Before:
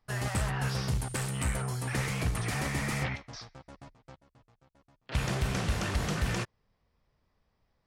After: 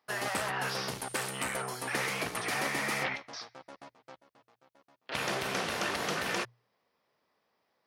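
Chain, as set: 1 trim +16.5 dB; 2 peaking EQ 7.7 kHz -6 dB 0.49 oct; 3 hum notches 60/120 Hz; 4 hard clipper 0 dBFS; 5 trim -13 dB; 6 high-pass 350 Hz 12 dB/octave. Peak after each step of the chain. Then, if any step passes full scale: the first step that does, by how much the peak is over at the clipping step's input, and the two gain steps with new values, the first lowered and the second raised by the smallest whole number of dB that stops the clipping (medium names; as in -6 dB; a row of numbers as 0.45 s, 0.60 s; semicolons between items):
-3.0 dBFS, -3.0 dBFS, -3.5 dBFS, -3.5 dBFS, -16.5 dBFS, -16.0 dBFS; nothing clips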